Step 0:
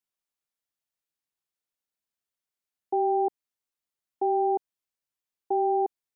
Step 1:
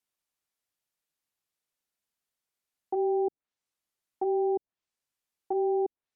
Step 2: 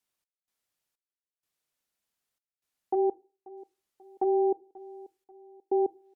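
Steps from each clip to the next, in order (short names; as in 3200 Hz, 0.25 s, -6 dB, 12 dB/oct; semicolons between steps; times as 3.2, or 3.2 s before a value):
treble ducked by the level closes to 410 Hz, closed at -24 dBFS; limiter -24 dBFS, peak gain reduction 6 dB; gain +3 dB
step gate "x.xx..xxx" 63 bpm -60 dB; feedback echo 0.537 s, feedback 43%, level -20.5 dB; reverb RT60 0.35 s, pre-delay 7 ms, DRR 19.5 dB; gain +2.5 dB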